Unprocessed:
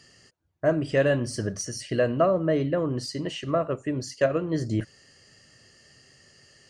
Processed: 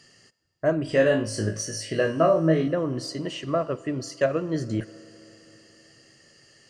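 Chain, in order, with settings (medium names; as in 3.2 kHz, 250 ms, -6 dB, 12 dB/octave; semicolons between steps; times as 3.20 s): peaking EQ 67 Hz -13.5 dB 0.58 oct; 0.85–2.68 s: flutter echo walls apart 3.2 m, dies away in 0.27 s; on a send at -18.5 dB: reverberation RT60 3.9 s, pre-delay 6 ms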